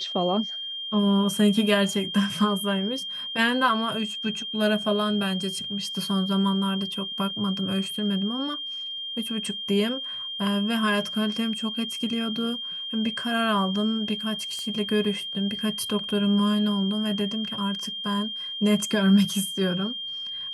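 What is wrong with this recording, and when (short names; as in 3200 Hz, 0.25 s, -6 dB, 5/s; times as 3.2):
tone 3200 Hz -31 dBFS
14.59 pop -22 dBFS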